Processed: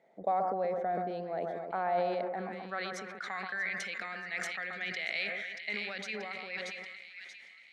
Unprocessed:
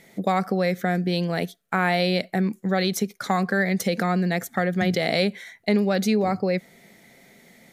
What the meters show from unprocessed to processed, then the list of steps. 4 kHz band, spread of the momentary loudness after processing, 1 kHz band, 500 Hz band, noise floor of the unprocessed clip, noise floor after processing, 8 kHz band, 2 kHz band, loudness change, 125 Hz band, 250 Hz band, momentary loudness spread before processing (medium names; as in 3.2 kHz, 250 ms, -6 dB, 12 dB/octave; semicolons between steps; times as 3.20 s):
-12.0 dB, 9 LU, -7.5 dB, -11.0 dB, -60 dBFS, -55 dBFS, -14.0 dB, -7.0 dB, -11.5 dB, -23.5 dB, -22.5 dB, 5 LU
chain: band-pass sweep 690 Hz -> 2.4 kHz, 1.98–3.62 s; low-pass 10 kHz 24 dB/octave; two-band feedback delay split 1.7 kHz, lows 130 ms, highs 632 ms, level -8.5 dB; decay stretcher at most 27 dB/s; trim -5 dB